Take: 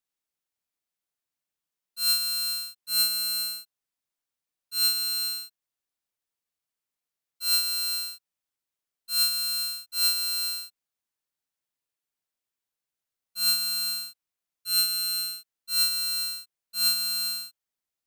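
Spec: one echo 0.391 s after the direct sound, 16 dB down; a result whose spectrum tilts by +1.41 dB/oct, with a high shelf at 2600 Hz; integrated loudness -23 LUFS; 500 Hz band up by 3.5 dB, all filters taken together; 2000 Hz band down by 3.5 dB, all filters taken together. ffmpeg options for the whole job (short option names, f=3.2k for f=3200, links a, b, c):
-af "equalizer=f=500:t=o:g=5,equalizer=f=2k:t=o:g=-4,highshelf=f=2.6k:g=-4,aecho=1:1:391:0.158,volume=5.5dB"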